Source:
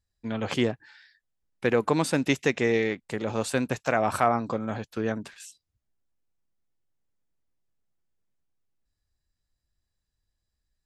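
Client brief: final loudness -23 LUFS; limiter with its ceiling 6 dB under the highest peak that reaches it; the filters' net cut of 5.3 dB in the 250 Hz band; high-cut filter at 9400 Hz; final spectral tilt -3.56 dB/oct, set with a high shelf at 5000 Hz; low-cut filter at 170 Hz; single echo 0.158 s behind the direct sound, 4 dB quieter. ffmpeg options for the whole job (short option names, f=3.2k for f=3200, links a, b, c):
-af "highpass=170,lowpass=9.4k,equalizer=f=250:t=o:g=-5.5,highshelf=f=5k:g=-7.5,alimiter=limit=-15.5dB:level=0:latency=1,aecho=1:1:158:0.631,volume=6.5dB"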